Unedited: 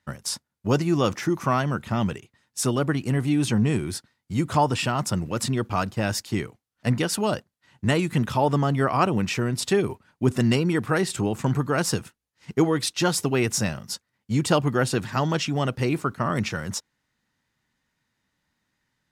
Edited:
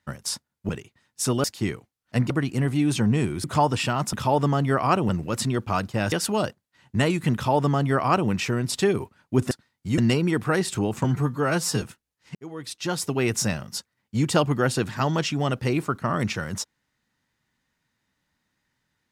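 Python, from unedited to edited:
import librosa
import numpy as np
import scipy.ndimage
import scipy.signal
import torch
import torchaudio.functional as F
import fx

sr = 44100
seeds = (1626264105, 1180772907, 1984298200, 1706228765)

y = fx.edit(x, sr, fx.cut(start_s=0.69, length_s=1.38),
    fx.move(start_s=3.96, length_s=0.47, to_s=10.4),
    fx.move(start_s=6.15, length_s=0.86, to_s=2.82),
    fx.duplicate(start_s=8.23, length_s=0.96, to_s=5.12),
    fx.stretch_span(start_s=11.46, length_s=0.52, factor=1.5),
    fx.fade_in_span(start_s=12.51, length_s=0.99), tone=tone)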